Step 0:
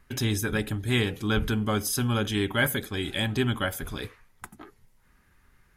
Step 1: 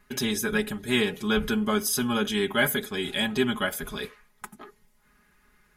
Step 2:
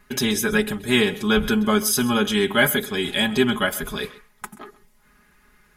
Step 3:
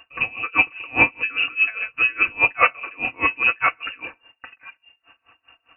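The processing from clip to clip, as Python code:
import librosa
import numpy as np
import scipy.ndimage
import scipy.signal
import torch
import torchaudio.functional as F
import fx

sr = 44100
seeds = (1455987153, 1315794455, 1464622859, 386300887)

y1 = fx.low_shelf(x, sr, hz=110.0, db=-9.0)
y1 = y1 + 0.8 * np.pad(y1, (int(4.8 * sr / 1000.0), 0))[:len(y1)]
y2 = y1 + 10.0 ** (-19.0 / 20.0) * np.pad(y1, (int(131 * sr / 1000.0), 0))[:len(y1)]
y2 = y2 * 10.0 ** (5.5 / 20.0)
y3 = fx.freq_invert(y2, sr, carrier_hz=2800)
y3 = y3 * 10.0 ** (-27 * (0.5 - 0.5 * np.cos(2.0 * np.pi * 4.9 * np.arange(len(y3)) / sr)) / 20.0)
y3 = y3 * 10.0 ** (6.5 / 20.0)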